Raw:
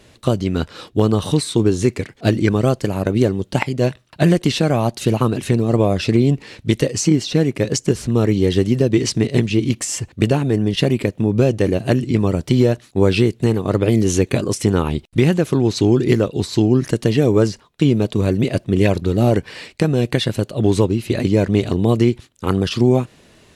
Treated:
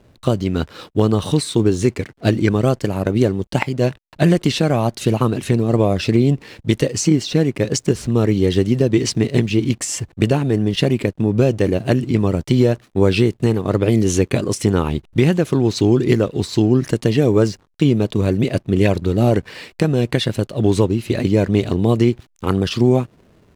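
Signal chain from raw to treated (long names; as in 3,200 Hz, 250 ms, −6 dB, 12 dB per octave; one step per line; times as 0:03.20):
slack as between gear wheels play −41.5 dBFS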